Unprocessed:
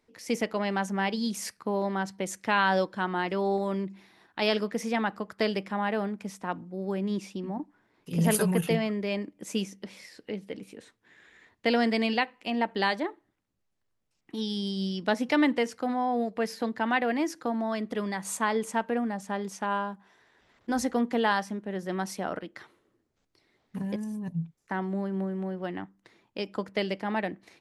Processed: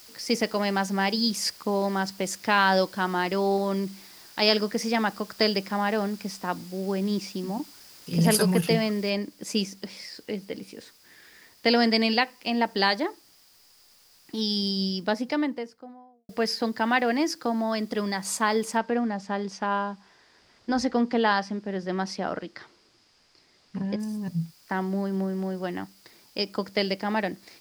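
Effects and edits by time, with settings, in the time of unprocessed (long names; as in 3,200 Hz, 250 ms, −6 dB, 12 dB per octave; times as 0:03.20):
0:09.10: noise floor change −55 dB −63 dB
0:14.56–0:16.29: fade out and dull
0:18.77–0:24.00: high-frequency loss of the air 100 metres
whole clip: parametric band 4,900 Hz +13 dB 0.31 octaves; level +3 dB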